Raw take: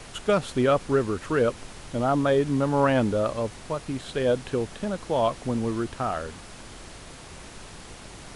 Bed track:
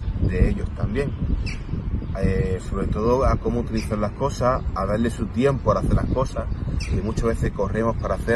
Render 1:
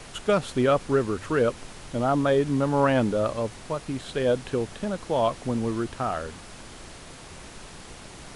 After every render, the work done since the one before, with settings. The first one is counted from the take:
hum removal 50 Hz, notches 2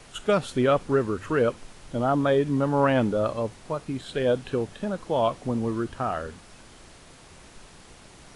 noise reduction from a noise print 6 dB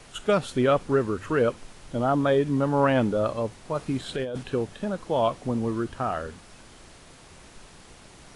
0:03.75–0:04.43: compressor whose output falls as the input rises −28 dBFS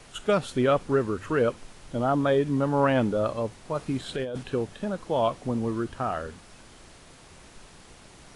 level −1 dB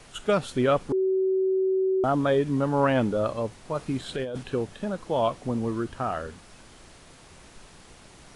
0:00.92–0:02.04: beep over 379 Hz −20.5 dBFS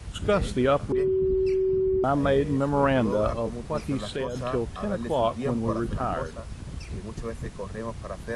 mix in bed track −12 dB

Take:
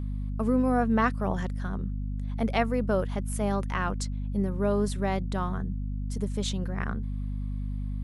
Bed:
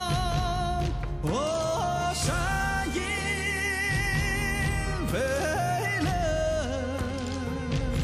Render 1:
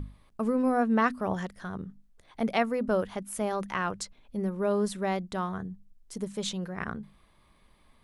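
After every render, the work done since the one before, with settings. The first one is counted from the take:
mains-hum notches 50/100/150/200/250 Hz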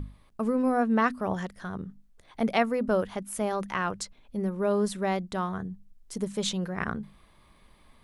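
speech leveller within 4 dB 2 s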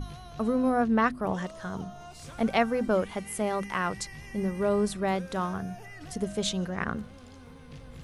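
mix in bed −18 dB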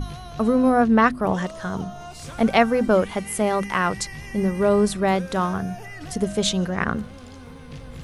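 level +7.5 dB

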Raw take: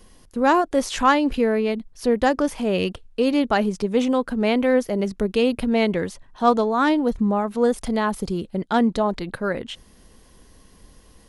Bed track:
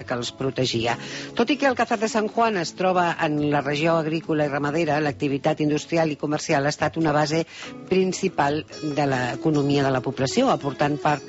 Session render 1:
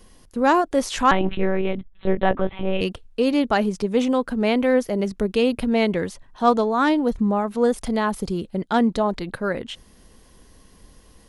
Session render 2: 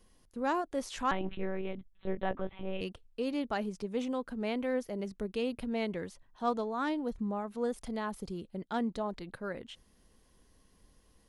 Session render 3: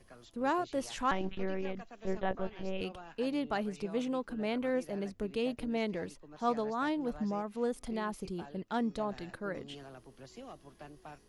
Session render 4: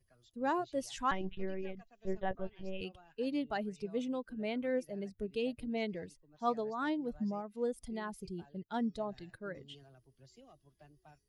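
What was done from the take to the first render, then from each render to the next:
0:01.11–0:02.81: one-pitch LPC vocoder at 8 kHz 190 Hz
level −14 dB
mix in bed track −29 dB
spectral dynamics exaggerated over time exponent 1.5

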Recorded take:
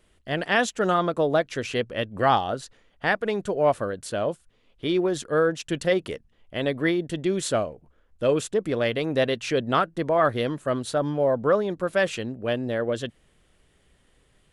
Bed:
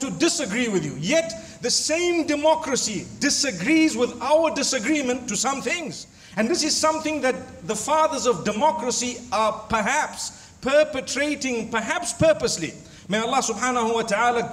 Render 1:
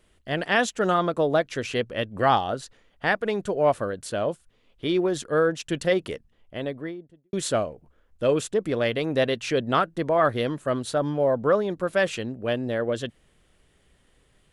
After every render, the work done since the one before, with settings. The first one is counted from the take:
0:06.15–0:07.33: fade out and dull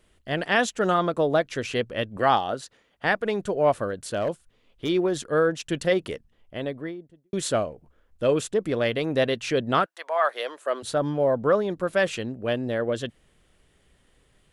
0:02.17–0:03.05: high-pass filter 170 Hz 6 dB per octave
0:03.89–0:04.89: hard clipping −20 dBFS
0:09.84–0:10.82: high-pass filter 910 Hz → 370 Hz 24 dB per octave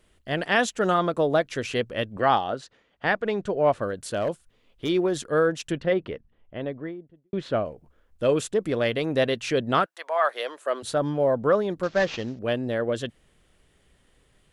0:02.17–0:03.82: high-frequency loss of the air 80 metres
0:05.72–0:07.66: high-frequency loss of the air 320 metres
0:11.83–0:12.39: variable-slope delta modulation 32 kbit/s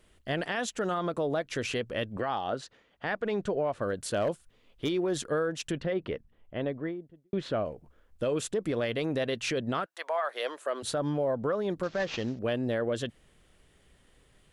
downward compressor, threshold −24 dBFS, peak gain reduction 9 dB
brickwall limiter −21 dBFS, peak gain reduction 6.5 dB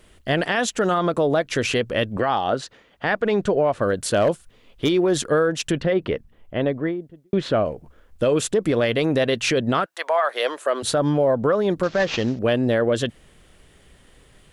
level +10 dB

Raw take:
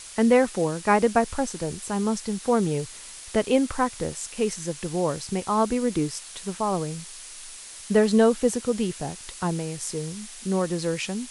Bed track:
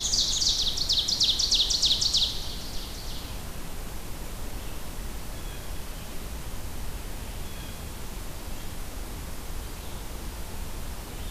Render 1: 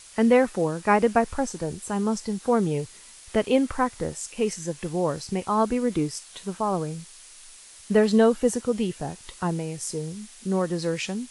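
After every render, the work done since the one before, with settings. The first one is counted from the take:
noise reduction from a noise print 6 dB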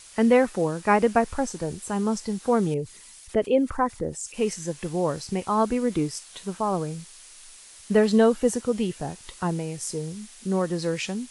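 0:02.74–0:04.34: spectral envelope exaggerated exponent 1.5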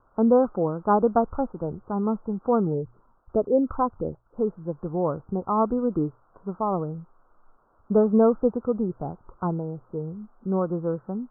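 Butterworth low-pass 1,400 Hz 96 dB per octave
mains-hum notches 60/120 Hz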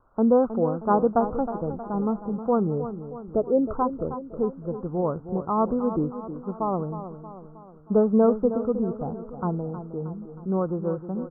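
high-frequency loss of the air 240 metres
repeating echo 315 ms, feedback 53%, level −11 dB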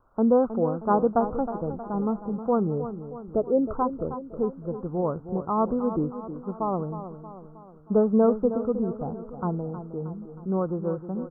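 level −1 dB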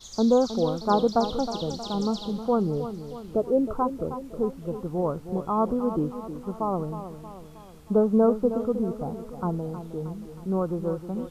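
mix in bed track −17 dB

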